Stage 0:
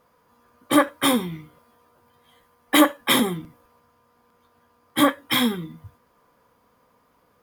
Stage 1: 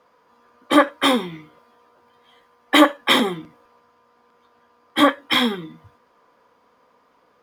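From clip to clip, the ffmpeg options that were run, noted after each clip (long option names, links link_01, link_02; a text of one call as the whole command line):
ffmpeg -i in.wav -filter_complex "[0:a]acrossover=split=240 6500:gain=0.251 1 0.178[link_01][link_02][link_03];[link_01][link_02][link_03]amix=inputs=3:normalize=0,volume=4dB" out.wav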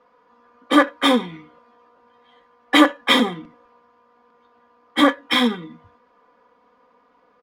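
ffmpeg -i in.wav -af "aecho=1:1:4.1:0.54,adynamicsmooth=sensitivity=3.5:basefreq=4800,volume=-1dB" out.wav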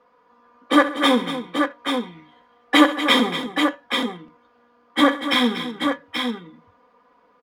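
ffmpeg -i in.wav -af "aecho=1:1:68|130|238|832:0.168|0.106|0.282|0.501,volume=-1dB" out.wav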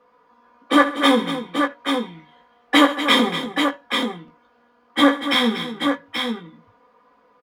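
ffmpeg -i in.wav -filter_complex "[0:a]asplit=2[link_01][link_02];[link_02]adelay=18,volume=-5.5dB[link_03];[link_01][link_03]amix=inputs=2:normalize=0" out.wav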